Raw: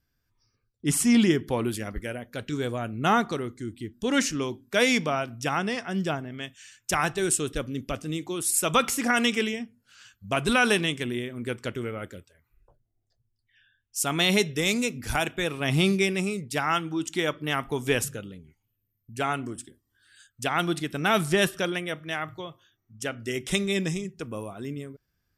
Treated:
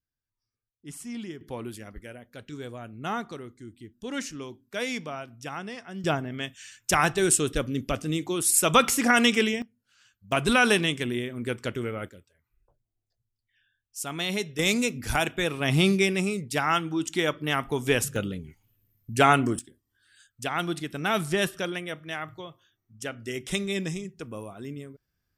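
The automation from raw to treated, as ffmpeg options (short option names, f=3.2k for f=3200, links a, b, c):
-af "asetnsamples=n=441:p=0,asendcmd='1.41 volume volume -9dB;6.04 volume volume 3dB;9.62 volume volume -9.5dB;10.32 volume volume 1dB;12.09 volume volume -7dB;14.59 volume volume 1dB;18.16 volume volume 9dB;19.59 volume volume -3dB',volume=-17dB"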